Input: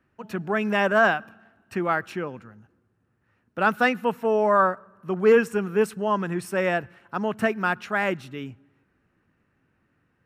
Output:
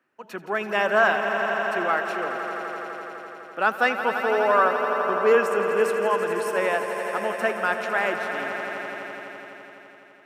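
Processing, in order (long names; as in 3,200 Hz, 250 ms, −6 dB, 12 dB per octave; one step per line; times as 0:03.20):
high-pass filter 380 Hz 12 dB per octave
on a send: echo that builds up and dies away 84 ms, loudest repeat 5, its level −11 dB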